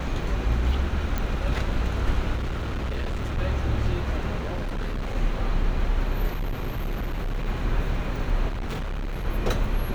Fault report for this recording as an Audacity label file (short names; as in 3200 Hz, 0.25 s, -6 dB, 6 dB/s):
1.180000	1.180000	pop -13 dBFS
2.350000	3.390000	clipped -24.5 dBFS
4.380000	5.160000	clipped -25 dBFS
6.330000	7.480000	clipped -24 dBFS
8.480000	9.260000	clipped -26.5 dBFS